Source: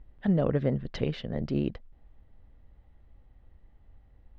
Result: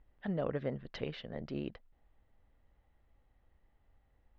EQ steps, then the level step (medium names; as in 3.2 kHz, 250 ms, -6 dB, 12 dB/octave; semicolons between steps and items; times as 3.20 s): distance through air 99 m; bass shelf 390 Hz -11 dB; -3.0 dB